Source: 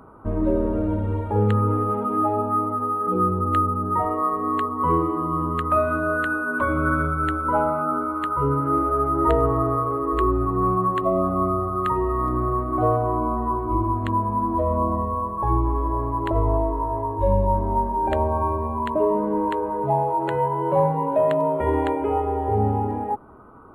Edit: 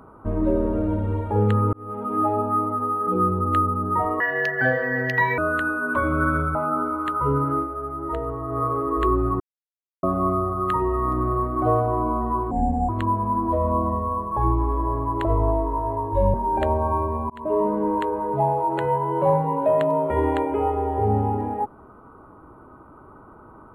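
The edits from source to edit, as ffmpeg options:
ffmpeg -i in.wav -filter_complex "[0:a]asplit=13[link_01][link_02][link_03][link_04][link_05][link_06][link_07][link_08][link_09][link_10][link_11][link_12][link_13];[link_01]atrim=end=1.73,asetpts=PTS-STARTPTS,afade=type=out:start_time=1.726:duration=0.004:curve=hsin[link_14];[link_02]atrim=start=1.73:end=4.204,asetpts=PTS-STARTPTS,afade=type=in:duration=0.49[link_15];[link_03]atrim=start=4.2:end=6.03,asetpts=PTS-STARTPTS,asetrate=68355,aresample=44100,atrim=end_sample=52066,asetpts=PTS-STARTPTS[link_16];[link_04]atrim=start=6.026:end=7.202[link_17];[link_05]atrim=start=7.708:end=8.84,asetpts=PTS-STARTPTS,afade=type=out:start_time=0.952:duration=0.18:silence=0.354813[link_18];[link_06]atrim=start=8.84:end=9.63,asetpts=PTS-STARTPTS,volume=-9dB[link_19];[link_07]atrim=start=9.63:end=10.56,asetpts=PTS-STARTPTS,afade=type=in:duration=0.18:silence=0.354813,afade=type=out:start_time=0.926:duration=0.004:curve=hsin[link_20];[link_08]atrim=start=10.56:end=11.19,asetpts=PTS-STARTPTS,volume=0[link_21];[link_09]atrim=start=11.19:end=13.674,asetpts=PTS-STARTPTS,afade=type=in:duration=0.004:curve=hsin[link_22];[link_10]atrim=start=13.67:end=13.95,asetpts=PTS-STARTPTS,asetrate=32634,aresample=44100,atrim=end_sample=16686,asetpts=PTS-STARTPTS[link_23];[link_11]atrim=start=13.946:end=17.402[link_24];[link_12]atrim=start=17.838:end=18.8,asetpts=PTS-STARTPTS,afade=type=out:start_time=0.958:duration=0.004:curve=hsin[link_25];[link_13]atrim=start=18.8,asetpts=PTS-STARTPTS,afade=type=in:duration=0.3[link_26];[link_14][link_15]concat=n=2:v=0:a=1[link_27];[link_27][link_16]acrossfade=duration=0.004:curve1=hsin:curve2=hsin[link_28];[link_28][link_17]acrossfade=duration=0.004:curve1=hsin:curve2=hsin[link_29];[link_18][link_19][link_20][link_21][link_22]concat=n=5:v=0:a=1[link_30];[link_29][link_30]acrossfade=duration=0.004:curve1=hsin:curve2=hsin[link_31];[link_31][link_23]acrossfade=duration=0.004:curve1=hsin:curve2=hsin[link_32];[link_32][link_24]acrossfade=duration=0.004:curve1=hsin:curve2=hsin[link_33];[link_25][link_26]concat=n=2:v=0:a=1[link_34];[link_33][link_34]acrossfade=duration=0.004:curve1=hsin:curve2=hsin" out.wav

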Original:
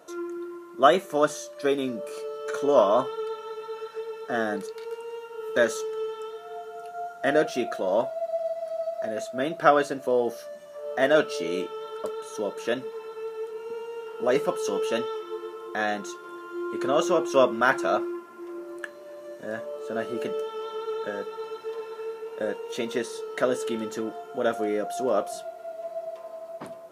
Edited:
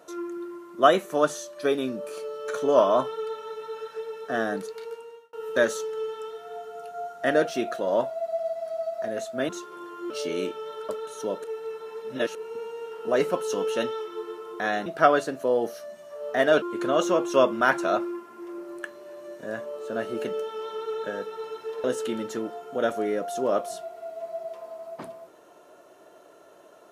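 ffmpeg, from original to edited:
ffmpeg -i in.wav -filter_complex "[0:a]asplit=9[link_01][link_02][link_03][link_04][link_05][link_06][link_07][link_08][link_09];[link_01]atrim=end=5.33,asetpts=PTS-STARTPTS,afade=type=out:start_time=4.81:duration=0.52[link_10];[link_02]atrim=start=5.33:end=9.492,asetpts=PTS-STARTPTS,afade=type=in:duration=0.004:curve=hsin[link_11];[link_03]atrim=start=16.008:end=16.622[link_12];[link_04]atrim=start=11.248:end=12.592[link_13];[link_05]atrim=start=12.588:end=13.502,asetpts=PTS-STARTPTS,areverse[link_14];[link_06]atrim=start=13.498:end=16.012[link_15];[link_07]atrim=start=9.488:end=11.252[link_16];[link_08]atrim=start=16.618:end=21.842[link_17];[link_09]atrim=start=23.458[link_18];[link_10][link_11]concat=n=2:v=0:a=1[link_19];[link_19][link_12]acrossfade=duration=0.004:curve1=hsin:curve2=hsin[link_20];[link_20][link_13]acrossfade=duration=0.004:curve1=hsin:curve2=hsin[link_21];[link_21][link_14]acrossfade=duration=0.004:curve1=hsin:curve2=hsin[link_22];[link_22][link_15]acrossfade=duration=0.004:curve1=hsin:curve2=hsin[link_23];[link_23][link_16]acrossfade=duration=0.004:curve1=hsin:curve2=hsin[link_24];[link_24][link_17]acrossfade=duration=0.004:curve1=hsin:curve2=hsin[link_25];[link_25][link_18]acrossfade=duration=0.004:curve1=hsin:curve2=hsin" out.wav

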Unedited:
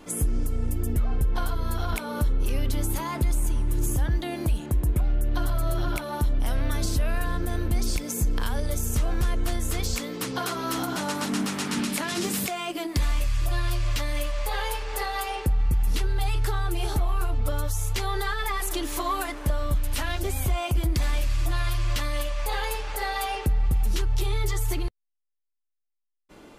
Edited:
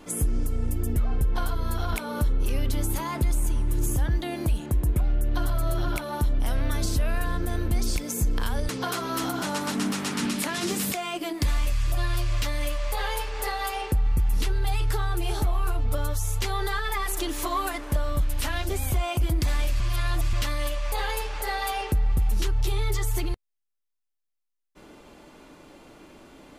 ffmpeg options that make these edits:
ffmpeg -i in.wav -filter_complex "[0:a]asplit=4[link_01][link_02][link_03][link_04];[link_01]atrim=end=8.692[link_05];[link_02]atrim=start=10.228:end=21.342[link_06];[link_03]atrim=start=21.338:end=21.872,asetpts=PTS-STARTPTS,areverse[link_07];[link_04]atrim=start=21.868[link_08];[link_05][link_06]acrossfade=duration=0.004:curve1=hsin:curve2=hsin[link_09];[link_09][link_07]acrossfade=duration=0.004:curve1=hsin:curve2=hsin[link_10];[link_10][link_08]acrossfade=duration=0.004:curve1=hsin:curve2=hsin" out.wav

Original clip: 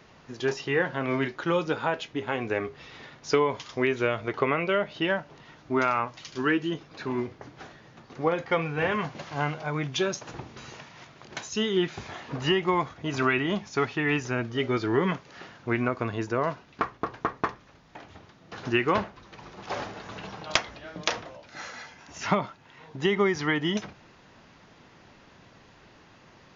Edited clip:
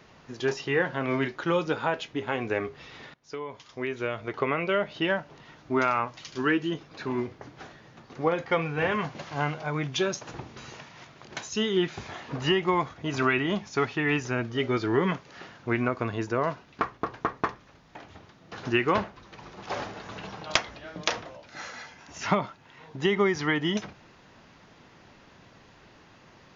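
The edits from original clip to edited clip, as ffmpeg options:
ffmpeg -i in.wav -filter_complex "[0:a]asplit=2[link_01][link_02];[link_01]atrim=end=3.14,asetpts=PTS-STARTPTS,afade=type=out:start_time=3.136:duration=0.004:curve=hsin:silence=0.0749894[link_03];[link_02]atrim=start=3.14,asetpts=PTS-STARTPTS,afade=type=in:duration=1.71:silence=0.0749894[link_04];[link_03][link_04]concat=n=2:v=0:a=1" out.wav

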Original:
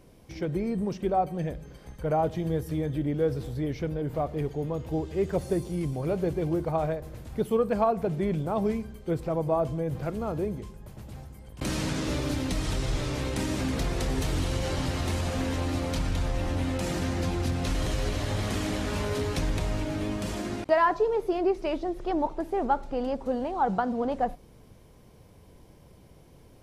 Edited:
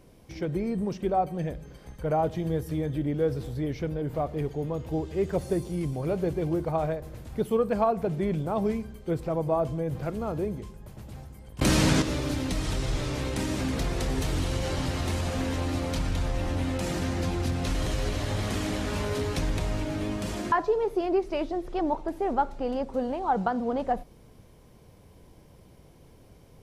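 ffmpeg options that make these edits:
ffmpeg -i in.wav -filter_complex "[0:a]asplit=4[link_01][link_02][link_03][link_04];[link_01]atrim=end=11.592[link_05];[link_02]atrim=start=11.588:end=12.022,asetpts=PTS-STARTPTS,volume=8dB[link_06];[link_03]atrim=start=12.018:end=20.522[link_07];[link_04]atrim=start=20.838[link_08];[link_05][link_06]acrossfade=duration=0.004:curve1=hsin:curve2=hsin[link_09];[link_09][link_07]acrossfade=duration=0.004:curve1=hsin:curve2=hsin[link_10];[link_10][link_08]acrossfade=duration=0.004:curve1=hsin:curve2=hsin" out.wav

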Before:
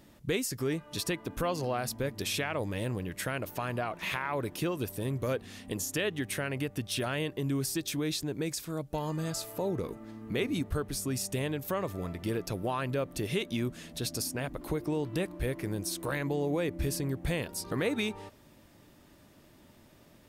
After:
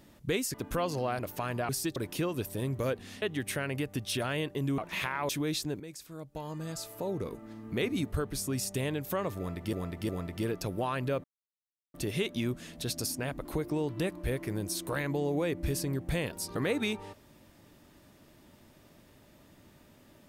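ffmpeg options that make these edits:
ffmpeg -i in.wav -filter_complex "[0:a]asplit=12[link_01][link_02][link_03][link_04][link_05][link_06][link_07][link_08][link_09][link_10][link_11][link_12];[link_01]atrim=end=0.542[link_13];[link_02]atrim=start=1.198:end=1.852[link_14];[link_03]atrim=start=3.378:end=3.882[link_15];[link_04]atrim=start=7.598:end=7.872[link_16];[link_05]atrim=start=4.388:end=5.652[link_17];[link_06]atrim=start=6.038:end=7.602[link_18];[link_07]atrim=start=3.878:end=4.392[link_19];[link_08]atrim=start=7.868:end=8.38,asetpts=PTS-STARTPTS,afade=type=out:start_time=0.508:duration=0.004:curve=hsin:silence=0.237137[link_20];[link_09]atrim=start=8.38:end=12.312,asetpts=PTS-STARTPTS,afade=type=in:duration=1.85:silence=0.237137[link_21];[link_10]atrim=start=11.948:end=12.312[link_22];[link_11]atrim=start=11.948:end=13.1,asetpts=PTS-STARTPTS,afade=type=out:start_time=1.148:duration=0.004:curve=hsin,apad=pad_dur=0.7[link_23];[link_12]atrim=start=13.1,asetpts=PTS-STARTPTS,afade=type=in:duration=0.004:curve=hsin[link_24];[link_13][link_14]acrossfade=duration=0.004:curve1=hsin:curve2=hsin[link_25];[link_25][link_15]acrossfade=duration=0.004:curve1=hsin:curve2=hsin[link_26];[link_26][link_16]acrossfade=duration=0.004:curve1=hsin:curve2=hsin[link_27];[link_27][link_17]acrossfade=duration=0.004:curve1=hsin:curve2=hsin[link_28];[link_28][link_18]acrossfade=duration=0.004:curve1=hsin:curve2=hsin[link_29];[link_29][link_19]acrossfade=duration=0.004:curve1=hsin:curve2=hsin[link_30];[link_20][link_21]concat=n=2:v=0:a=1[link_31];[link_30][link_31]acrossfade=duration=0.004:curve1=hsin:curve2=hsin[link_32];[link_32][link_22]acrossfade=duration=0.004:curve1=hsin:curve2=hsin[link_33];[link_23][link_24]concat=n=2:v=0:a=1[link_34];[link_33][link_34]acrossfade=duration=0.004:curve1=hsin:curve2=hsin" out.wav

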